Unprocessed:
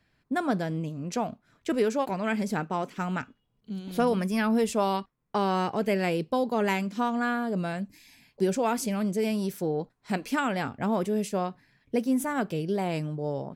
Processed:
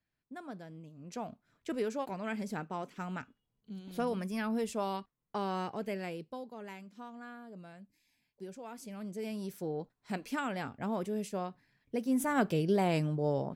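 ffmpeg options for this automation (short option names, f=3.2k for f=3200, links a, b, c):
-af "volume=11dB,afade=t=in:st=0.92:d=0.4:silence=0.354813,afade=t=out:st=5.61:d=0.94:silence=0.281838,afade=t=in:st=8.69:d=1.05:silence=0.251189,afade=t=in:st=12:d=0.41:silence=0.398107"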